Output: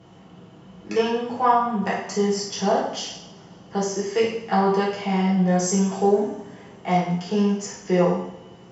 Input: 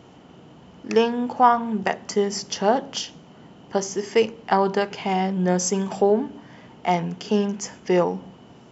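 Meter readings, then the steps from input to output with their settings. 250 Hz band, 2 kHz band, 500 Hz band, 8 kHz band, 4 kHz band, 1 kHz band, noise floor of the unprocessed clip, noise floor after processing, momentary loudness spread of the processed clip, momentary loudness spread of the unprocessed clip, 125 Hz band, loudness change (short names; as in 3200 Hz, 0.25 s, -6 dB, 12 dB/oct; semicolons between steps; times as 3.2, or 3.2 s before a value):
+2.0 dB, -1.0 dB, -0.5 dB, n/a, -1.0 dB, -1.0 dB, -48 dBFS, -47 dBFS, 11 LU, 10 LU, +4.0 dB, 0.0 dB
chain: added harmonics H 5 -41 dB, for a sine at -3.5 dBFS; two-slope reverb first 0.64 s, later 2.8 s, from -25 dB, DRR -7 dB; gain -8.5 dB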